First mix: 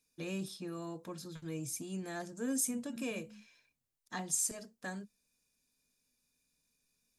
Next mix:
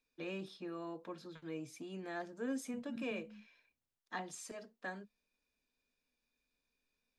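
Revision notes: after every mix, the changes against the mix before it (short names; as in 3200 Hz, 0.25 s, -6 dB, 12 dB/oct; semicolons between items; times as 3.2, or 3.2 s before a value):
first voice: add three-band isolator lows -14 dB, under 240 Hz, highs -22 dB, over 4000 Hz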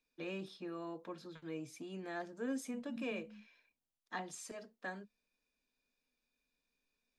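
second voice: add fixed phaser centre 400 Hz, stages 6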